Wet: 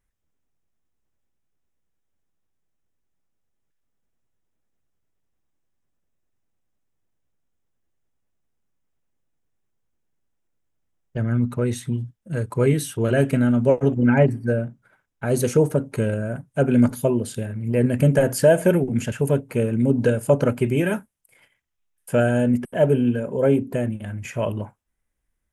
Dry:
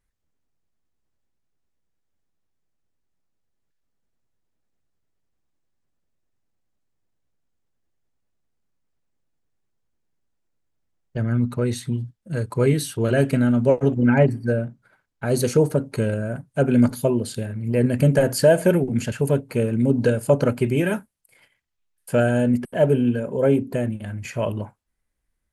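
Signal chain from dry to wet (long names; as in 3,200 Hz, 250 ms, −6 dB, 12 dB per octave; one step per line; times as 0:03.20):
parametric band 4,400 Hz −9.5 dB 0.25 octaves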